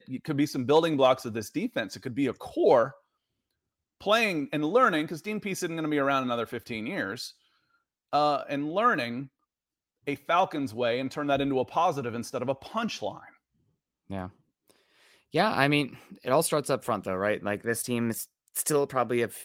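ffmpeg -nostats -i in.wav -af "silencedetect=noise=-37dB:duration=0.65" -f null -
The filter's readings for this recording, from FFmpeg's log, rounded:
silence_start: 2.90
silence_end: 4.02 | silence_duration: 1.12
silence_start: 7.28
silence_end: 8.13 | silence_duration: 0.84
silence_start: 9.25
silence_end: 10.08 | silence_duration: 0.83
silence_start: 13.20
silence_end: 14.10 | silence_duration: 0.91
silence_start: 14.28
silence_end: 15.34 | silence_duration: 1.07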